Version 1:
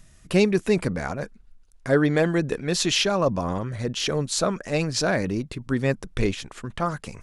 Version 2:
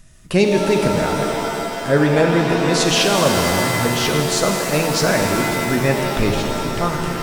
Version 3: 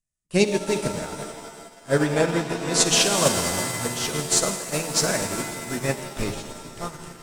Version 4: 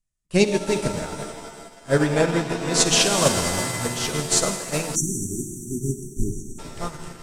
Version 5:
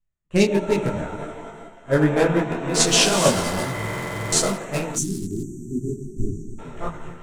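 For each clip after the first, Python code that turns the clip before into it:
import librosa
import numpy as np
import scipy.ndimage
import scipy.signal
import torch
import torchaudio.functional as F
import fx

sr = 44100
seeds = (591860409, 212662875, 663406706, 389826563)

y1 = fx.rev_shimmer(x, sr, seeds[0], rt60_s=3.2, semitones=7, shimmer_db=-2, drr_db=2.5)
y1 = y1 * 10.0 ** (3.5 / 20.0)
y2 = fx.peak_eq(y1, sr, hz=8200.0, db=11.0, octaves=1.1)
y2 = fx.upward_expand(y2, sr, threshold_db=-37.0, expansion=2.5)
y2 = y2 * 10.0 ** (-2.5 / 20.0)
y3 = scipy.signal.sosfilt(scipy.signal.bessel(2, 12000.0, 'lowpass', norm='mag', fs=sr, output='sos'), y2)
y3 = fx.spec_erase(y3, sr, start_s=4.95, length_s=1.64, low_hz=430.0, high_hz=5600.0)
y3 = fx.low_shelf(y3, sr, hz=70.0, db=8.5)
y3 = y3 * 10.0 ** (1.0 / 20.0)
y4 = fx.wiener(y3, sr, points=9)
y4 = fx.buffer_glitch(y4, sr, at_s=(3.72,), block=2048, repeats=12)
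y4 = fx.detune_double(y4, sr, cents=45)
y4 = y4 * 10.0 ** (5.0 / 20.0)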